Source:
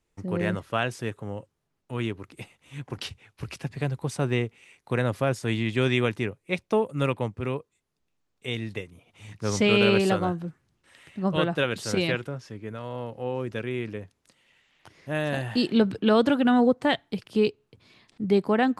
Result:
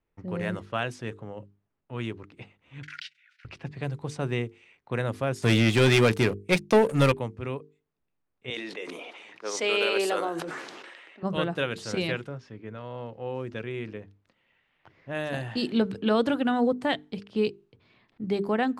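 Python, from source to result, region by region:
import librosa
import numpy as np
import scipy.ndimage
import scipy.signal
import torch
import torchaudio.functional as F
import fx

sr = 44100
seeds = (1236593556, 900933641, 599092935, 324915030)

y = fx.chain(x, sr, fx.transient(attack_db=3, sustain_db=-10),
    fx.cheby_ripple_highpass(hz=1400.0, ripple_db=3),
    fx.pre_swell(db_per_s=39.0), at=(2.83, 3.45))
y = fx.chain(y, sr, fx.high_shelf(hz=3700.0, db=4.5),
    fx.leveller(passes=3), at=(5.42, 7.12))
y = fx.chain(y, sr, fx.highpass(hz=340.0, slope=24),
    fx.high_shelf(hz=8100.0, db=6.5),
    fx.sustainer(db_per_s=26.0), at=(8.5, 11.23))
y = fx.env_lowpass(y, sr, base_hz=2300.0, full_db=-21.5)
y = fx.hum_notches(y, sr, base_hz=50, count=9)
y = y * 10.0 ** (-3.0 / 20.0)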